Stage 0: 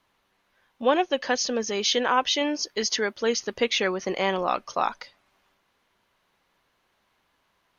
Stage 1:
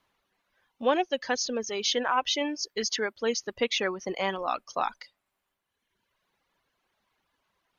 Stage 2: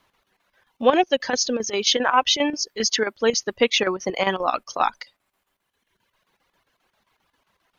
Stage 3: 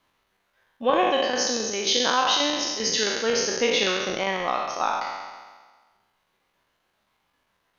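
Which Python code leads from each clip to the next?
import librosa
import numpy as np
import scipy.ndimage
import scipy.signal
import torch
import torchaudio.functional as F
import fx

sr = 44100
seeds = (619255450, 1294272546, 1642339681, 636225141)

y1 = fx.dereverb_blind(x, sr, rt60_s=1.4)
y1 = y1 * librosa.db_to_amplitude(-3.0)
y2 = fx.chopper(y1, sr, hz=7.5, depth_pct=65, duty_pct=75)
y2 = y2 * librosa.db_to_amplitude(8.5)
y3 = fx.spec_trails(y2, sr, decay_s=1.47)
y3 = y3 * librosa.db_to_amplitude(-7.0)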